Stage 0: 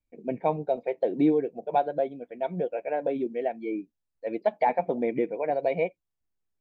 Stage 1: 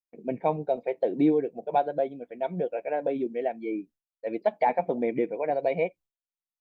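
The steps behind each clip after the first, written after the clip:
downward expander −47 dBFS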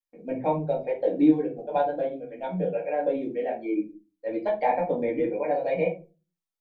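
rectangular room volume 120 cubic metres, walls furnished, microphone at 2.2 metres
level −4.5 dB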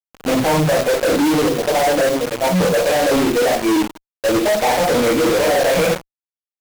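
one scale factor per block 3 bits
fuzz pedal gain 38 dB, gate −40 dBFS

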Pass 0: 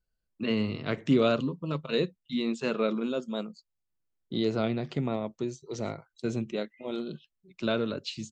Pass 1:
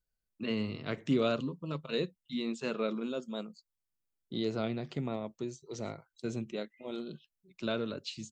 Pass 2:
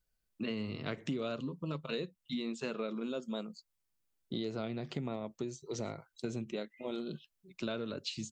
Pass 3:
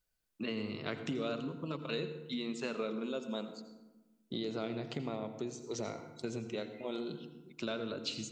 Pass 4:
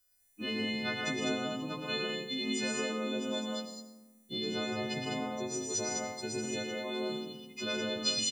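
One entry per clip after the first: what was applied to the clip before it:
high-shelf EQ 6,700 Hz +6 dB; level −5.5 dB
downward compressor 5 to 1, threshold −39 dBFS, peak gain reduction 14 dB; level +4.5 dB
low-shelf EQ 210 Hz −6 dB; convolution reverb RT60 1.1 s, pre-delay 78 ms, DRR 9.5 dB; level +1 dB
every partial snapped to a pitch grid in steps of 3 semitones; loudspeakers that aren't time-aligned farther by 39 metres −6 dB, 52 metres −4 dB, 69 metres −3 dB

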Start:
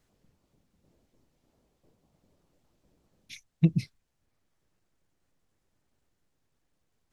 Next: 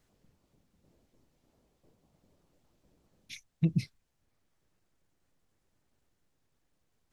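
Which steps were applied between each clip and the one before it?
brickwall limiter −17.5 dBFS, peak gain reduction 6.5 dB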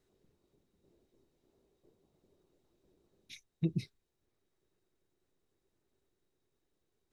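hollow resonant body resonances 380/3,800 Hz, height 13 dB, ringing for 35 ms
level −6.5 dB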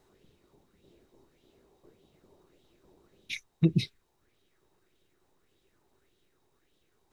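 auto-filter bell 1.7 Hz 830–3,400 Hz +11 dB
level +8.5 dB

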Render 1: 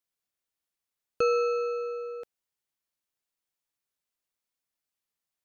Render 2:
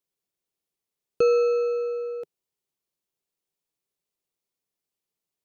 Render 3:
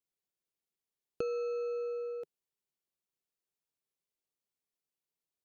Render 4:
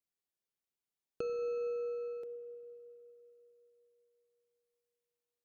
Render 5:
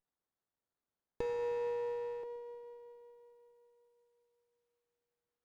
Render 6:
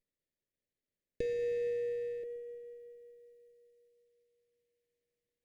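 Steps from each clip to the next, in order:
graphic EQ with 15 bands 160 Hz +7 dB, 400 Hz +9 dB, 1,600 Hz −5 dB
downward compressor 6 to 1, threshold −26 dBFS, peak gain reduction 9 dB; level −7 dB
convolution reverb RT60 3.5 s, pre-delay 31 ms, DRR 7.5 dB; level −3.5 dB
windowed peak hold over 17 samples; level +1 dB
running median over 9 samples; elliptic band-stop filter 600–1,800 Hz, stop band 50 dB; level +3 dB

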